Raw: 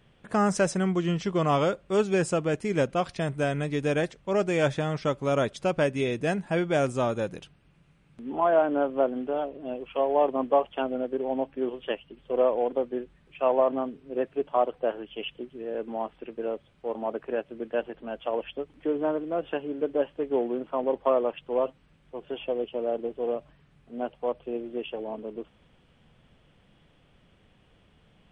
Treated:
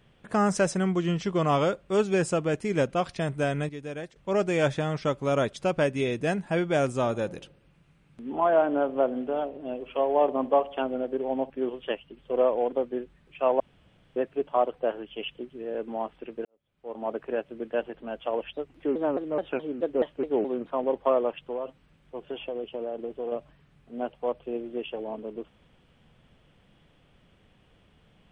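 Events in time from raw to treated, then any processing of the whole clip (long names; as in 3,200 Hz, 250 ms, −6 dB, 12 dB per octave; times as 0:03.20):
0:03.69–0:04.16: clip gain −10.5 dB
0:06.94–0:11.50: delay with a low-pass on its return 68 ms, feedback 52%, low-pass 770 Hz, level −18 dB
0:13.60–0:14.16: fill with room tone
0:16.45–0:17.09: fade in quadratic
0:18.53–0:20.71: pitch modulation by a square or saw wave saw down 4.7 Hz, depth 250 cents
0:21.45–0:23.32: downward compressor, threshold −28 dBFS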